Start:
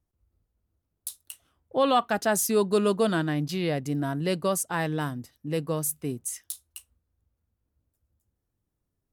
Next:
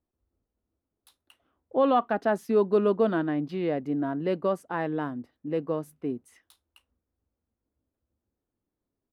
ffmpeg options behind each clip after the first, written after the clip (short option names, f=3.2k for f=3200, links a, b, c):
-af "firequalizer=gain_entry='entry(140,0);entry(240,11);entry(6900,-18)':delay=0.05:min_phase=1,volume=-9dB"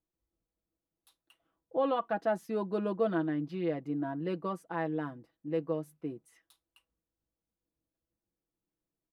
-af "aecho=1:1:6.1:0.65,volume=-7.5dB"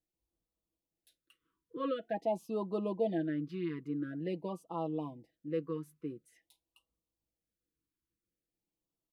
-af "afftfilt=real='re*(1-between(b*sr/1024,660*pow(1900/660,0.5+0.5*sin(2*PI*0.47*pts/sr))/1.41,660*pow(1900/660,0.5+0.5*sin(2*PI*0.47*pts/sr))*1.41))':imag='im*(1-between(b*sr/1024,660*pow(1900/660,0.5+0.5*sin(2*PI*0.47*pts/sr))/1.41,660*pow(1900/660,0.5+0.5*sin(2*PI*0.47*pts/sr))*1.41))':win_size=1024:overlap=0.75,volume=-2.5dB"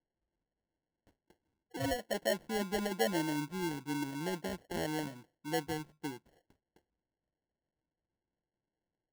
-af "acrusher=samples=36:mix=1:aa=0.000001"